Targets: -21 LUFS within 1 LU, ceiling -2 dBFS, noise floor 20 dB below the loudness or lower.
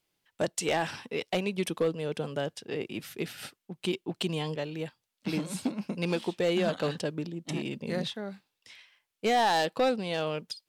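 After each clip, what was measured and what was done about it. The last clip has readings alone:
clipped samples 0.3%; clipping level -19.0 dBFS; loudness -31.5 LUFS; peak level -19.0 dBFS; loudness target -21.0 LUFS
-> clip repair -19 dBFS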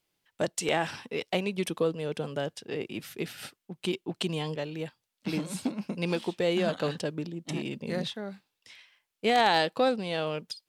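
clipped samples 0.0%; loudness -31.0 LUFS; peak level -10.0 dBFS; loudness target -21.0 LUFS
-> trim +10 dB; peak limiter -2 dBFS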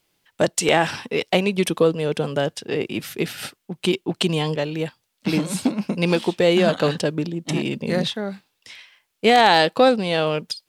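loudness -21.0 LUFS; peak level -2.0 dBFS; noise floor -74 dBFS

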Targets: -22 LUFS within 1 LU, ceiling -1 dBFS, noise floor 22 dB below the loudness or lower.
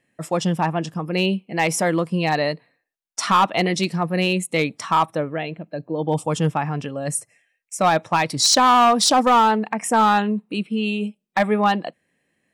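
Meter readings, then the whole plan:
clipped samples 1.7%; clipping level -10.0 dBFS; loudness -20.0 LUFS; peak level -10.0 dBFS; loudness target -22.0 LUFS
-> clip repair -10 dBFS; trim -2 dB

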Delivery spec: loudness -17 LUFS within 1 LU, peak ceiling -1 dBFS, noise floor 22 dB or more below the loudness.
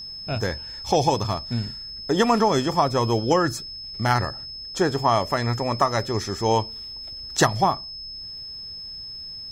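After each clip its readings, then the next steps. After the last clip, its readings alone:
tick rate 26 per s; steady tone 5.2 kHz; tone level -34 dBFS; loudness -24.0 LUFS; peak level -5.5 dBFS; loudness target -17.0 LUFS
-> de-click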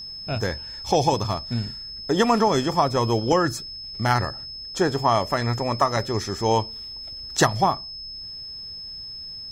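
tick rate 0.11 per s; steady tone 5.2 kHz; tone level -34 dBFS
-> band-stop 5.2 kHz, Q 30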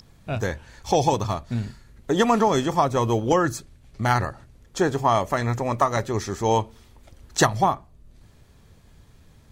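steady tone not found; loudness -23.5 LUFS; peak level -5.5 dBFS; loudness target -17.0 LUFS
-> trim +6.5 dB; peak limiter -1 dBFS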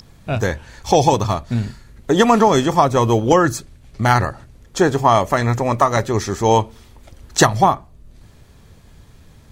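loudness -17.0 LUFS; peak level -1.0 dBFS; noise floor -48 dBFS

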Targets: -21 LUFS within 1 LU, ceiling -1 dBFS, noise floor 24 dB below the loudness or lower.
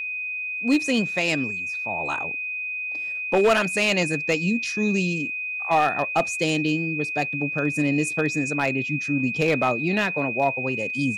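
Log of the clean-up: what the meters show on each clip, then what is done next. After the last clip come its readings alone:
clipped samples 0.5%; clipping level -13.0 dBFS; steady tone 2.5 kHz; tone level -27 dBFS; loudness -23.0 LUFS; peak level -13.0 dBFS; loudness target -21.0 LUFS
-> clip repair -13 dBFS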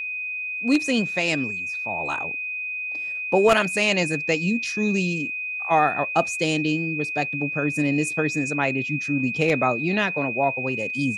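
clipped samples 0.0%; steady tone 2.5 kHz; tone level -27 dBFS
-> band-stop 2.5 kHz, Q 30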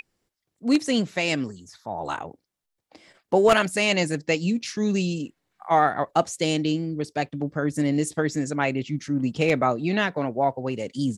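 steady tone not found; loudness -24.5 LUFS; peak level -3.5 dBFS; loudness target -21.0 LUFS
-> trim +3.5 dB; peak limiter -1 dBFS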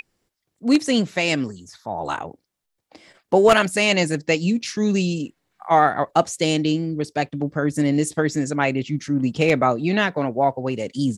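loudness -21.0 LUFS; peak level -1.0 dBFS; noise floor -78 dBFS

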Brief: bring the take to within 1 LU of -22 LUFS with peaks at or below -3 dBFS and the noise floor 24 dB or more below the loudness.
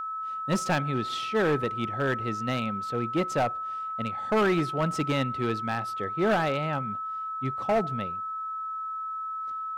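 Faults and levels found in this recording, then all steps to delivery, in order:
clipped samples 1.8%; clipping level -19.5 dBFS; steady tone 1.3 kHz; tone level -31 dBFS; loudness -28.5 LUFS; peak level -19.5 dBFS; loudness target -22.0 LUFS
-> clip repair -19.5 dBFS; band-stop 1.3 kHz, Q 30; trim +6.5 dB

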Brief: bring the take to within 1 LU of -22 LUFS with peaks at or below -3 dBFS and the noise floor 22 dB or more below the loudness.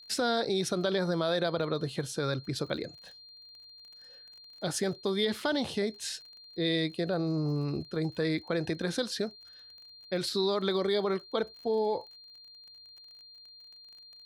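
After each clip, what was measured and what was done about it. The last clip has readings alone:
tick rate 33 per s; steady tone 4.2 kHz; tone level -50 dBFS; loudness -31.5 LUFS; peak level -15.5 dBFS; loudness target -22.0 LUFS
-> de-click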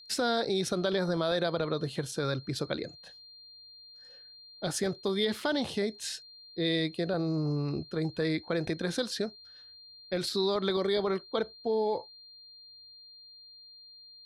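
tick rate 0 per s; steady tone 4.2 kHz; tone level -50 dBFS
-> band-stop 4.2 kHz, Q 30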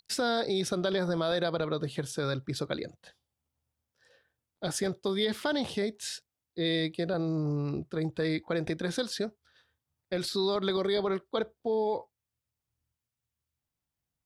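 steady tone not found; loudness -31.5 LUFS; peak level -15.5 dBFS; loudness target -22.0 LUFS
-> trim +9.5 dB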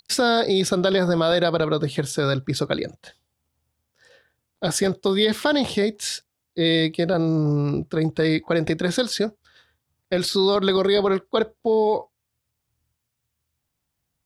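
loudness -22.0 LUFS; peak level -6.0 dBFS; noise floor -79 dBFS

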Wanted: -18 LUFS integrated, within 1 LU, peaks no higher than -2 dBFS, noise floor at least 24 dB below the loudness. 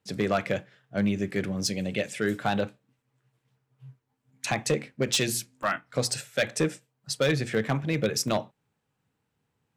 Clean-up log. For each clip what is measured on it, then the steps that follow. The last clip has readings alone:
clipped samples 0.4%; clipping level -17.0 dBFS; dropouts 2; longest dropout 2.2 ms; loudness -28.5 LUFS; peak level -17.0 dBFS; loudness target -18.0 LUFS
-> clip repair -17 dBFS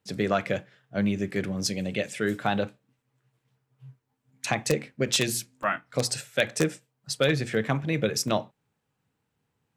clipped samples 0.0%; dropouts 2; longest dropout 2.2 ms
-> interpolate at 5.63/8.28 s, 2.2 ms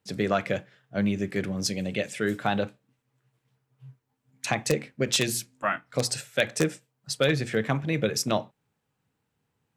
dropouts 0; loudness -28.0 LUFS; peak level -8.0 dBFS; loudness target -18.0 LUFS
-> trim +10 dB; peak limiter -2 dBFS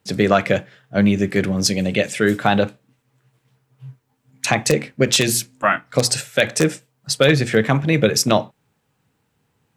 loudness -18.5 LUFS; peak level -2.0 dBFS; noise floor -69 dBFS

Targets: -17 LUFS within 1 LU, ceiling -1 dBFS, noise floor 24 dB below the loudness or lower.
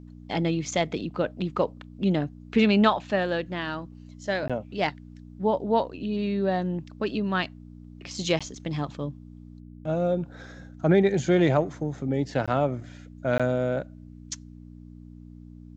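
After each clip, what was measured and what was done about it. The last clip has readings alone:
dropouts 4; longest dropout 16 ms; hum 60 Hz; highest harmonic 300 Hz; hum level -42 dBFS; loudness -26.5 LUFS; peak level -7.5 dBFS; loudness target -17.0 LUFS
-> interpolate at 4.48/8.39/12.46/13.38 s, 16 ms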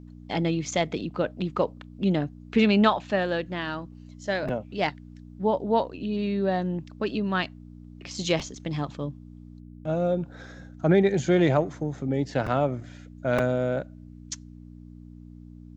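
dropouts 0; hum 60 Hz; highest harmonic 300 Hz; hum level -42 dBFS
-> de-hum 60 Hz, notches 5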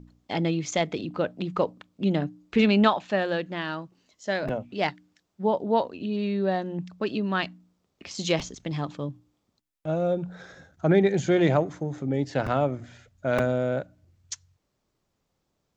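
hum not found; loudness -27.0 LUFS; peak level -7.5 dBFS; loudness target -17.0 LUFS
-> trim +10 dB; peak limiter -1 dBFS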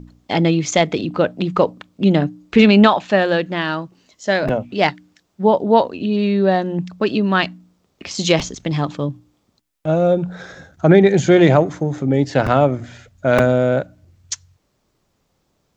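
loudness -17.0 LUFS; peak level -1.0 dBFS; noise floor -67 dBFS

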